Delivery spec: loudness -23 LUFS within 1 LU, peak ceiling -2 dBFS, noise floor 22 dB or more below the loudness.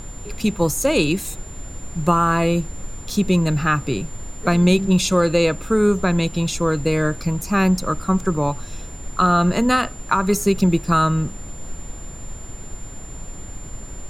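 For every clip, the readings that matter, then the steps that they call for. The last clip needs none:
steady tone 7200 Hz; tone level -40 dBFS; noise floor -36 dBFS; noise floor target -42 dBFS; loudness -19.5 LUFS; peak -3.5 dBFS; loudness target -23.0 LUFS
-> notch 7200 Hz, Q 30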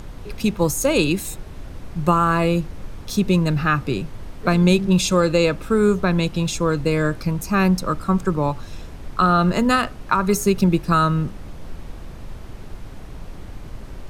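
steady tone none; noise floor -37 dBFS; noise floor target -42 dBFS
-> noise print and reduce 6 dB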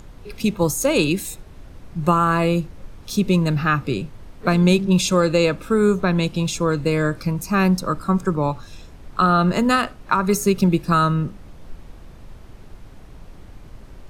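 noise floor -43 dBFS; loudness -20.0 LUFS; peak -3.5 dBFS; loudness target -23.0 LUFS
-> gain -3 dB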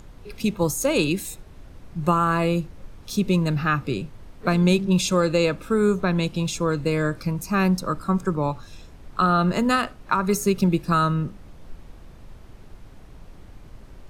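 loudness -23.0 LUFS; peak -6.5 dBFS; noise floor -46 dBFS

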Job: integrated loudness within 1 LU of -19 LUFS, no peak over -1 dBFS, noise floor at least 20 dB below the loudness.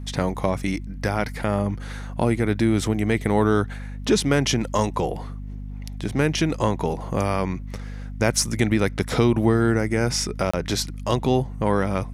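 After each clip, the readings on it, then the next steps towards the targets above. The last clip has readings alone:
dropouts 1; longest dropout 25 ms; hum 50 Hz; harmonics up to 250 Hz; hum level -30 dBFS; loudness -23.0 LUFS; peak -5.0 dBFS; loudness target -19.0 LUFS
-> interpolate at 10.51, 25 ms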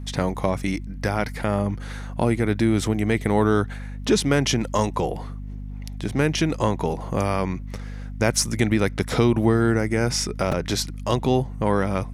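dropouts 0; hum 50 Hz; harmonics up to 250 Hz; hum level -30 dBFS
-> notches 50/100/150/200/250 Hz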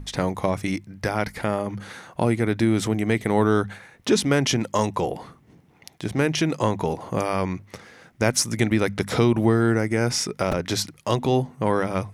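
hum none; loudness -23.5 LUFS; peak -4.5 dBFS; loudness target -19.0 LUFS
-> gain +4.5 dB; limiter -1 dBFS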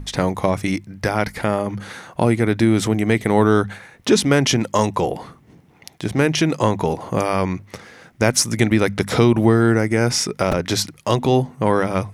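loudness -19.0 LUFS; peak -1.0 dBFS; noise floor -52 dBFS

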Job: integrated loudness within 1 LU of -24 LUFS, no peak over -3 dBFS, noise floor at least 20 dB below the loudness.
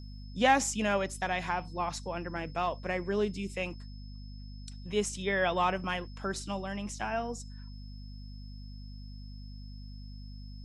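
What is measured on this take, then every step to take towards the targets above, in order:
hum 50 Hz; harmonics up to 250 Hz; hum level -42 dBFS; steady tone 5200 Hz; tone level -57 dBFS; loudness -32.0 LUFS; peak -11.5 dBFS; loudness target -24.0 LUFS
-> notches 50/100/150/200/250 Hz; notch 5200 Hz, Q 30; gain +8 dB

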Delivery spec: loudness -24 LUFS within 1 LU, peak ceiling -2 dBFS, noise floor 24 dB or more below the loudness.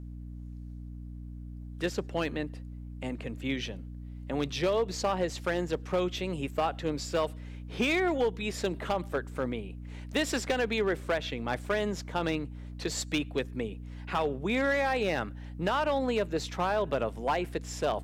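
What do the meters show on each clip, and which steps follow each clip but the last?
clipped 0.7%; flat tops at -21.0 dBFS; hum 60 Hz; harmonics up to 300 Hz; hum level -39 dBFS; loudness -31.5 LUFS; peak -21.0 dBFS; loudness target -24.0 LUFS
-> clip repair -21 dBFS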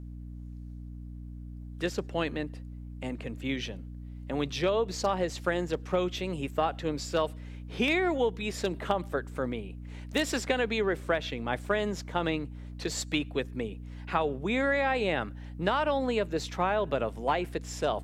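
clipped 0.0%; hum 60 Hz; harmonics up to 300 Hz; hum level -39 dBFS
-> de-hum 60 Hz, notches 5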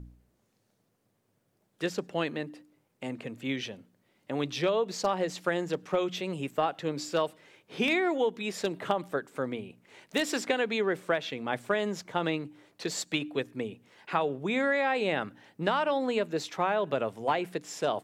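hum none; loudness -31.0 LUFS; peak -12.0 dBFS; loudness target -24.0 LUFS
-> gain +7 dB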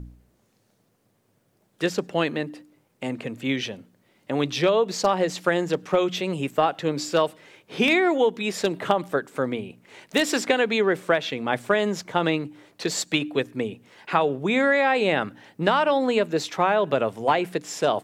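loudness -24.0 LUFS; peak -5.0 dBFS; noise floor -67 dBFS

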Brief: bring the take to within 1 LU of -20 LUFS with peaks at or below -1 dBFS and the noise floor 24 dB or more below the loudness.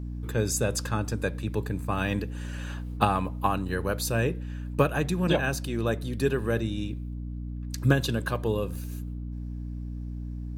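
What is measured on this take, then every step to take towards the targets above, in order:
hum 60 Hz; harmonics up to 300 Hz; hum level -32 dBFS; loudness -29.0 LUFS; peak -7.0 dBFS; loudness target -20.0 LUFS
-> notches 60/120/180/240/300 Hz; gain +9 dB; limiter -1 dBFS

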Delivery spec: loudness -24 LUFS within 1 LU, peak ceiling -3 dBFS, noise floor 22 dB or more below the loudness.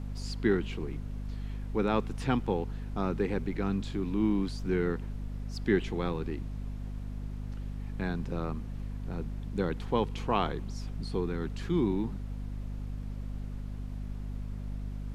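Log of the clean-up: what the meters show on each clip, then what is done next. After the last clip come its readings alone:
hum 50 Hz; harmonics up to 250 Hz; hum level -35 dBFS; noise floor -39 dBFS; noise floor target -56 dBFS; loudness -33.5 LUFS; peak -13.0 dBFS; loudness target -24.0 LUFS
-> de-hum 50 Hz, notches 5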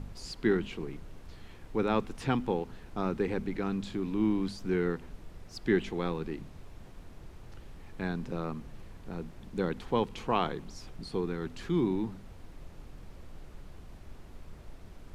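hum none; noise floor -50 dBFS; noise floor target -55 dBFS
-> noise print and reduce 6 dB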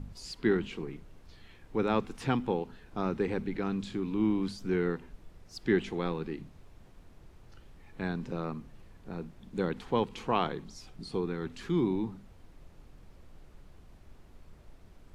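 noise floor -56 dBFS; loudness -33.0 LUFS; peak -13.5 dBFS; loudness target -24.0 LUFS
-> gain +9 dB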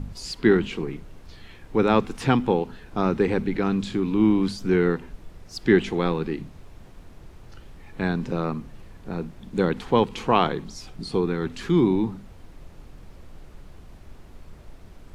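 loudness -24.0 LUFS; peak -4.5 dBFS; noise floor -47 dBFS

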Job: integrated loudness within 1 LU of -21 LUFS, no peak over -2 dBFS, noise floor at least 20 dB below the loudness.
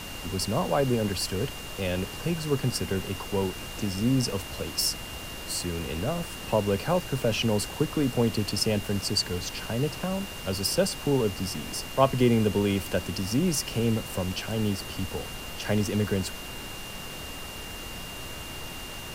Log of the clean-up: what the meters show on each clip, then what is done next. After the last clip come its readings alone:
steady tone 2800 Hz; tone level -42 dBFS; noise floor -39 dBFS; noise floor target -49 dBFS; loudness -28.5 LUFS; peak -7.5 dBFS; loudness target -21.0 LUFS
-> notch 2800 Hz, Q 30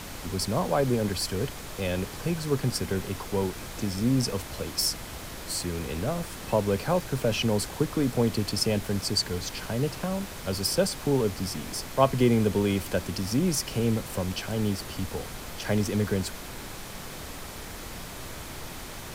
steady tone none; noise floor -40 dBFS; noise floor target -48 dBFS
-> noise print and reduce 8 dB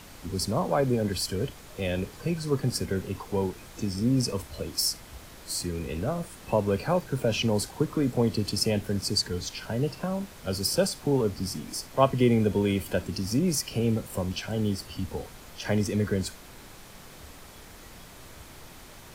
noise floor -48 dBFS; noise floor target -49 dBFS
-> noise print and reduce 6 dB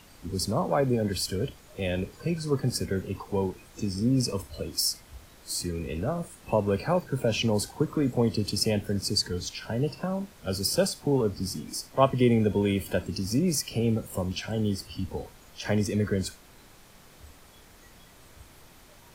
noise floor -53 dBFS; loudness -28.5 LUFS; peak -7.5 dBFS; loudness target -21.0 LUFS
-> gain +7.5 dB; limiter -2 dBFS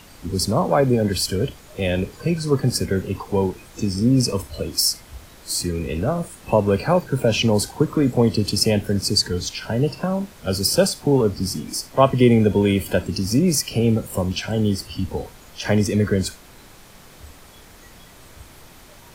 loudness -21.0 LUFS; peak -2.0 dBFS; noise floor -46 dBFS

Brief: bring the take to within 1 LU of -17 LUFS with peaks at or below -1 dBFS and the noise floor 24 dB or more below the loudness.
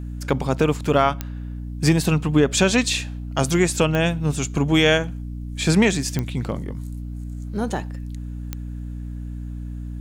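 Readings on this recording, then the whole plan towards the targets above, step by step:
clicks 4; hum 60 Hz; harmonics up to 300 Hz; hum level -28 dBFS; loudness -21.0 LUFS; peak -6.0 dBFS; loudness target -17.0 LUFS
-> de-click; notches 60/120/180/240/300 Hz; gain +4 dB

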